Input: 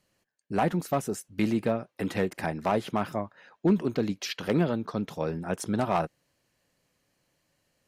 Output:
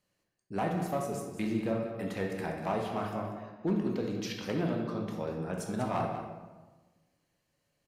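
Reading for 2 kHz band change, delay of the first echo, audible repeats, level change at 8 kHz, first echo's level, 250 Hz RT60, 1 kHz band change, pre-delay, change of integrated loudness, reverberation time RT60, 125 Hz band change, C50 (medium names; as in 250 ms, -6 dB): -5.0 dB, 192 ms, 1, -6.0 dB, -10.5 dB, 1.5 s, -4.5 dB, 11 ms, -5.0 dB, 1.3 s, -4.0 dB, 3.0 dB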